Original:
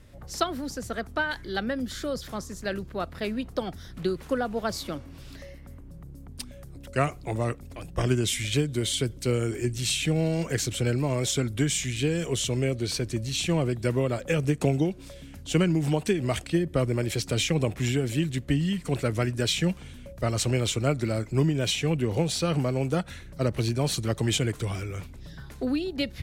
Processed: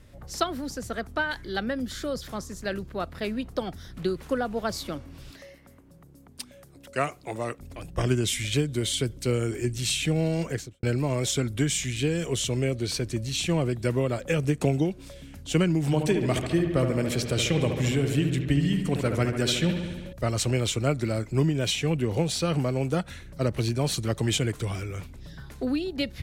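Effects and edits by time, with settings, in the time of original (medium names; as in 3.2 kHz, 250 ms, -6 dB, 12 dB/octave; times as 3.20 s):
5.31–7.59 s: high-pass 330 Hz 6 dB/octave
10.41–10.83 s: studio fade out
15.82–20.13 s: feedback echo behind a low-pass 71 ms, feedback 71%, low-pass 2.6 kHz, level -6.5 dB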